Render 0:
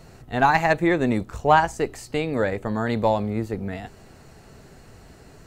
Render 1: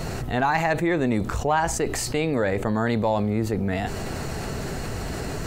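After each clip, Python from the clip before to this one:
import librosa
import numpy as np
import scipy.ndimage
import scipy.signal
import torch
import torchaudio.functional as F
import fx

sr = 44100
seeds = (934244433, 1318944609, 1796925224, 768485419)

y = fx.env_flatten(x, sr, amount_pct=70)
y = y * librosa.db_to_amplitude(-7.0)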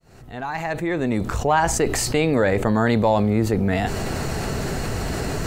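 y = fx.fade_in_head(x, sr, length_s=1.76)
y = y * librosa.db_to_amplitude(4.5)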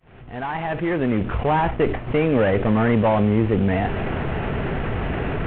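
y = fx.cvsd(x, sr, bps=16000)
y = y * librosa.db_to_amplitude(2.0)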